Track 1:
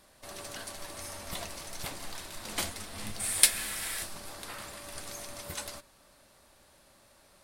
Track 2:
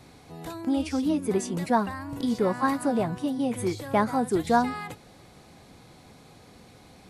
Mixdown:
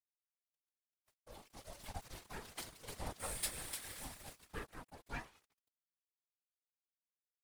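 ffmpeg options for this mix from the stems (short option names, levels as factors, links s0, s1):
-filter_complex "[0:a]asoftclip=type=hard:threshold=0.0944,volume=0.562,afade=t=in:st=1.31:d=0.31:silence=0.298538,afade=t=out:st=4.28:d=0.35:silence=0.251189,asplit=2[s0][s1];[s1]volume=0.562[s2];[1:a]aphaser=in_gain=1:out_gain=1:delay=2.7:decay=0.56:speed=0.39:type=triangular,aeval=exprs='abs(val(0))':c=same,adelay=600,volume=0.178[s3];[s2]aecho=0:1:300|600|900|1200:1|0.29|0.0841|0.0244[s4];[s0][s3][s4]amix=inputs=3:normalize=0,aeval=exprs='sgn(val(0))*max(abs(val(0))-0.0075,0)':c=same,afftfilt=real='hypot(re,im)*cos(2*PI*random(0))':imag='hypot(re,im)*sin(2*PI*random(1))':win_size=512:overlap=0.75"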